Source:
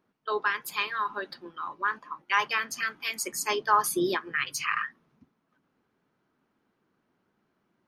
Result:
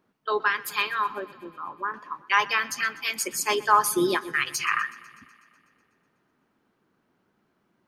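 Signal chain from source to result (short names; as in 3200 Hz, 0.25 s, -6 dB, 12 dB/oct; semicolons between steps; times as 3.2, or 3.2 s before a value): 1.15–1.94 LPF 1000 Hz 12 dB/oct; on a send: thinning echo 0.124 s, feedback 68%, high-pass 210 Hz, level -20.5 dB; on the sum: gain +3.5 dB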